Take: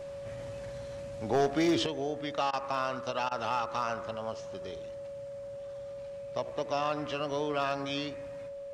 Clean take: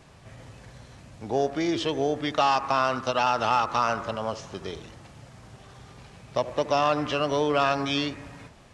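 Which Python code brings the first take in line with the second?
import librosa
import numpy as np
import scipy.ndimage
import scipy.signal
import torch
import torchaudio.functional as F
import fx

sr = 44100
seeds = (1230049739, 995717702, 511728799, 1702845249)

y = fx.fix_declip(x, sr, threshold_db=-20.5)
y = fx.notch(y, sr, hz=560.0, q=30.0)
y = fx.fix_interpolate(y, sr, at_s=(2.51, 3.29), length_ms=21.0)
y = fx.gain(y, sr, db=fx.steps((0.0, 0.0), (1.86, 8.5)))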